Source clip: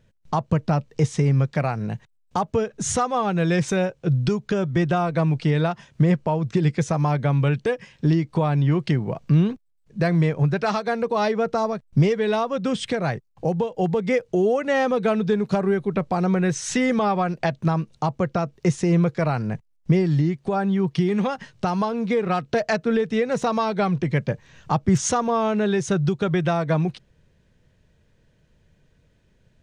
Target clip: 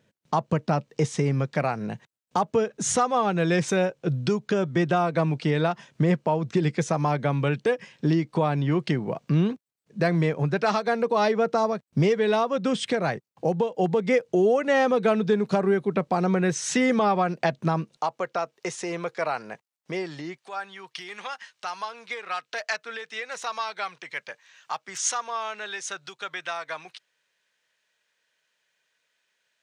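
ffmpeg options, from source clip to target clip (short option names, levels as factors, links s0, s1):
-af "asetnsamples=n=441:p=0,asendcmd='17.97 highpass f 570;20.38 highpass f 1300',highpass=190"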